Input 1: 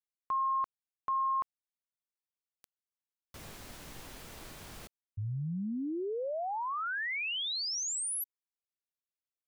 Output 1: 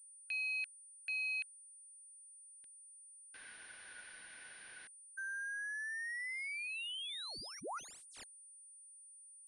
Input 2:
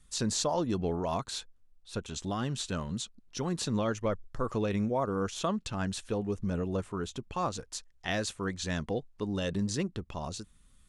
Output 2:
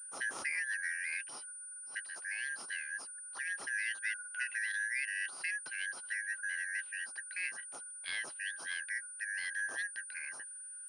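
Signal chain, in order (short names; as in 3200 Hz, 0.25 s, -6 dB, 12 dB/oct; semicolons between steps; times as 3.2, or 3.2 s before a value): four-band scrambler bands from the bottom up 4123; HPF 340 Hz 12 dB/oct; pulse-width modulation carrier 9300 Hz; gain -7 dB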